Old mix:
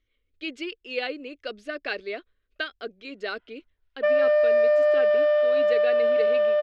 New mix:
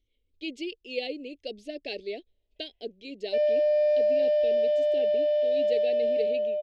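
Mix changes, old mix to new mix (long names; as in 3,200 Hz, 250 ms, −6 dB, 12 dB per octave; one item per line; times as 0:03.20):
background: entry −0.70 s
master: add Butterworth band-reject 1,300 Hz, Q 0.57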